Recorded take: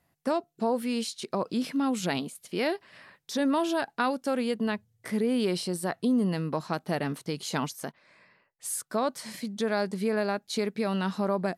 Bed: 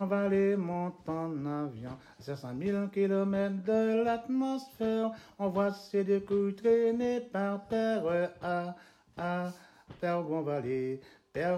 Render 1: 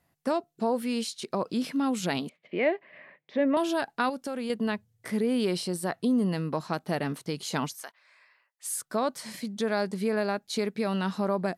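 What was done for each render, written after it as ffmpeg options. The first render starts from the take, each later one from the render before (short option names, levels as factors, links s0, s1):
-filter_complex "[0:a]asettb=1/sr,asplit=3[s0][s1][s2];[s0]atrim=end=2.294[s3];[s1]atrim=start=2.29:end=3.57,asetpts=PTS-STARTPTS,afade=t=in:d=0.004:c=qsin,afade=t=out:st=1.276:d=0.004:c=qsin,highpass=f=150:w=0.5412,highpass=f=150:w=1.3066,equalizer=f=200:t=q:w=4:g=-3,equalizer=f=600:t=q:w=4:g=7,equalizer=f=890:t=q:w=4:g=-4,equalizer=f=1400:t=q:w=4:g=-8,equalizer=f=2100:t=q:w=4:g=7,lowpass=f=2600:w=0.5412,lowpass=f=2600:w=1.3066[s4];[s2]atrim=start=3.566[s5];[s3][s4]acrossfade=d=0.004:c1=hsin:c2=qsin[s6];[s6][s5]acrossfade=d=0.004:c1=qsin:c2=hsin,asettb=1/sr,asplit=3[s7][s8][s9];[s7]atrim=end=4.094[s10];[s8]atrim=start=4.09:end=4.5,asetpts=PTS-STARTPTS,afade=t=in:d=0.004:c=qsin,afade=t=out:st=0.406:d=0.004:c=qsin,acompressor=threshold=0.0355:ratio=5:attack=3.2:release=140:knee=1:detection=peak[s11];[s9]atrim=start=4.496[s12];[s10][s11]acrossfade=d=0.004:c1=hsin:c2=qsin[s13];[s13][s12]acrossfade=d=0.004:c1=qsin:c2=hsin,asettb=1/sr,asplit=3[s14][s15][s16];[s14]atrim=end=7.774[s17];[s15]atrim=start=7.77:end=8.78,asetpts=PTS-STARTPTS,afade=t=in:d=0.004:c=qsin,afade=t=out:st=1.006:d=0.004:c=qsin,highpass=960[s18];[s16]atrim=start=8.776[s19];[s17][s18]acrossfade=d=0.004:c1=hsin:c2=qsin[s20];[s20][s19]acrossfade=d=0.004:c1=qsin:c2=hsin"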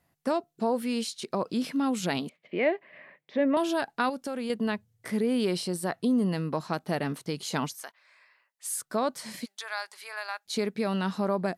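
-filter_complex "[0:a]asplit=3[s0][s1][s2];[s0]afade=t=out:st=9.44:d=0.02[s3];[s1]highpass=f=910:w=0.5412,highpass=f=910:w=1.3066,afade=t=in:st=9.44:d=0.02,afade=t=out:st=10.45:d=0.02[s4];[s2]afade=t=in:st=10.45:d=0.02[s5];[s3][s4][s5]amix=inputs=3:normalize=0"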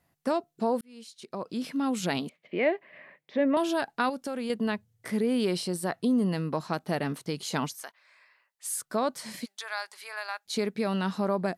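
-filter_complex "[0:a]asplit=2[s0][s1];[s0]atrim=end=0.81,asetpts=PTS-STARTPTS,afade=t=out:st=0.806:d=0.004:c=hsin[s2];[s1]atrim=start=0.81,asetpts=PTS-STARTPTS,afade=t=in:d=1.19[s3];[s2][s3]concat=n=2:v=0:a=1"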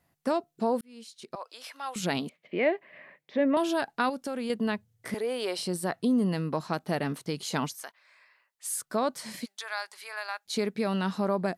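-filter_complex "[0:a]asettb=1/sr,asplit=3[s0][s1][s2];[s0]atrim=end=1.354[s3];[s1]atrim=start=1.35:end=1.96,asetpts=PTS-STARTPTS,afade=t=in:d=0.004:c=qsin,afade=t=out:st=0.606:d=0.004:c=qsin,highpass=f=650:w=0.5412,highpass=f=650:w=1.3066[s4];[s2]atrim=start=1.956[s5];[s3][s4]acrossfade=d=0.004:c1=hsin:c2=qsin[s6];[s6][s5]acrossfade=d=0.004:c1=qsin:c2=hsin,asettb=1/sr,asplit=3[s7][s8][s9];[s7]atrim=end=5.144[s10];[s8]atrim=start=5.14:end=5.59,asetpts=PTS-STARTPTS,afade=t=in:d=0.004:c=qsin,afade=t=out:st=0.446:d=0.004:c=qsin,highpass=f=610:t=q:w=1.6[s11];[s9]atrim=start=5.586[s12];[s10][s11]acrossfade=d=0.004:c1=hsin:c2=qsin[s13];[s13][s12]acrossfade=d=0.004:c1=qsin:c2=hsin"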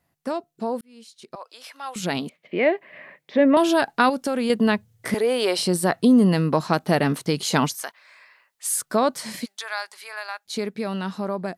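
-af "dynaudnorm=f=420:g=13:m=3.16"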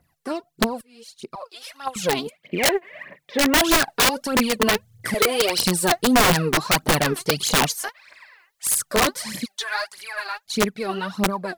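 -af "aphaser=in_gain=1:out_gain=1:delay=3:decay=0.76:speed=1.6:type=triangular,aeval=exprs='(mod(3.55*val(0)+1,2)-1)/3.55':c=same"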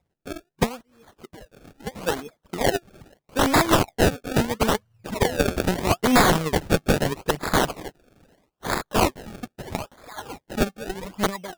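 -af "acrusher=samples=30:mix=1:aa=0.000001:lfo=1:lforange=30:lforate=0.77,aeval=exprs='0.282*(cos(1*acos(clip(val(0)/0.282,-1,1)))-cos(1*PI/2))+0.0562*(cos(3*acos(clip(val(0)/0.282,-1,1)))-cos(3*PI/2))':c=same"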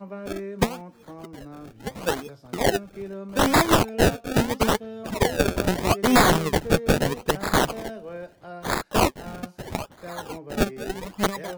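-filter_complex "[1:a]volume=0.447[s0];[0:a][s0]amix=inputs=2:normalize=0"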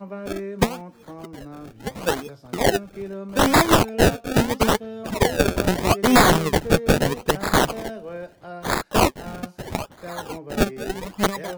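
-af "volume=1.33"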